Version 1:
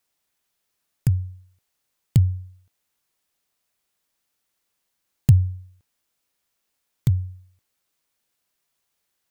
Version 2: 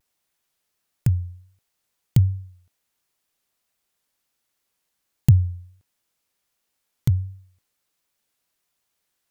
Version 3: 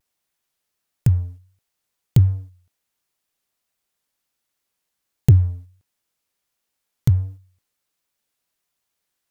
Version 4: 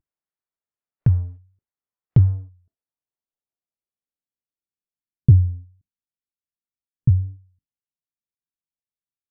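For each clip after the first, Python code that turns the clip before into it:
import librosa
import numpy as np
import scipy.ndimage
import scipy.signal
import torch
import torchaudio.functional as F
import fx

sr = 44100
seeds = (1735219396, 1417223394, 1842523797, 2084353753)

y1 = fx.vibrato(x, sr, rate_hz=1.4, depth_cents=69.0)
y2 = fx.leveller(y1, sr, passes=1)
y3 = fx.filter_sweep_lowpass(y2, sr, from_hz=1500.0, to_hz=240.0, start_s=2.09, end_s=5.5, q=0.87)
y3 = fx.noise_reduce_blind(y3, sr, reduce_db=14)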